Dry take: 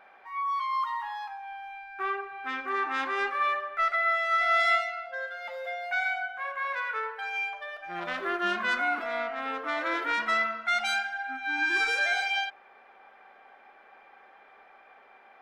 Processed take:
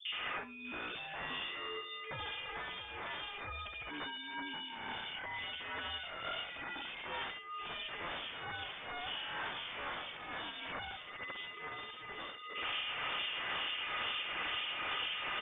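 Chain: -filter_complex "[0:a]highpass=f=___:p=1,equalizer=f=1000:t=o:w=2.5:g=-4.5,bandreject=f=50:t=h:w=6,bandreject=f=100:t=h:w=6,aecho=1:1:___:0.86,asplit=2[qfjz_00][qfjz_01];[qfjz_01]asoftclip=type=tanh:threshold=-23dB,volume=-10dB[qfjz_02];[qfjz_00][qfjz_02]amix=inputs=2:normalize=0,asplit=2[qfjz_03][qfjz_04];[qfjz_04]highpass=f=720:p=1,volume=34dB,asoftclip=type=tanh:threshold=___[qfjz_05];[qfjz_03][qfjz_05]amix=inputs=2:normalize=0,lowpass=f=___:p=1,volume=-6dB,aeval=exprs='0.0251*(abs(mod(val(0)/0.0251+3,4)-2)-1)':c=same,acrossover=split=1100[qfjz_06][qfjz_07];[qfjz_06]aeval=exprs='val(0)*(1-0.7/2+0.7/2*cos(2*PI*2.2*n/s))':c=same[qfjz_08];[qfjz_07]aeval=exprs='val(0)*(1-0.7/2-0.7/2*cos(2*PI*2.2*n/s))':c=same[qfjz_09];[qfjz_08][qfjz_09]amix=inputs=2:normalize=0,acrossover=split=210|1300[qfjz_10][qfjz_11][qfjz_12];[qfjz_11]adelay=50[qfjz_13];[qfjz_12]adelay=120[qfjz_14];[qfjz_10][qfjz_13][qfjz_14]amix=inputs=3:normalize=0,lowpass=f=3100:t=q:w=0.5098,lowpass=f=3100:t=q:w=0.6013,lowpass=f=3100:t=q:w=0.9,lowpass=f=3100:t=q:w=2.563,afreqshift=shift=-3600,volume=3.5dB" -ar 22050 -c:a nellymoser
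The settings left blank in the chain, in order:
44, 4.3, -13dB, 1100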